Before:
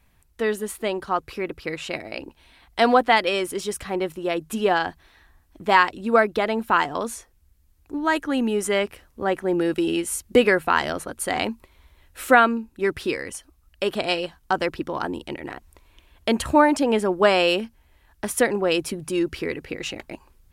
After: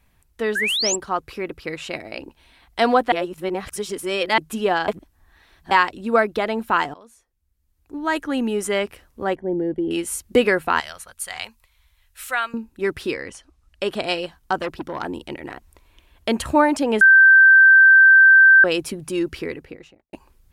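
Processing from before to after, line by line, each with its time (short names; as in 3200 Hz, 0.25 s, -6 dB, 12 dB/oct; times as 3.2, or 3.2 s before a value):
0.55–0.96 painted sound rise 1500–7900 Hz -22 dBFS
3.12–4.38 reverse
4.88–5.71 reverse
6.94–8.17 fade in quadratic, from -20.5 dB
9.35–9.91 running mean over 34 samples
10.8–12.54 passive tone stack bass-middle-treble 10-0-10
13.13–13.97 LPF 5000 Hz -> 12000 Hz
14.59–15.06 core saturation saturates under 1100 Hz
17.01–18.64 bleep 1560 Hz -7 dBFS
19.33–20.13 studio fade out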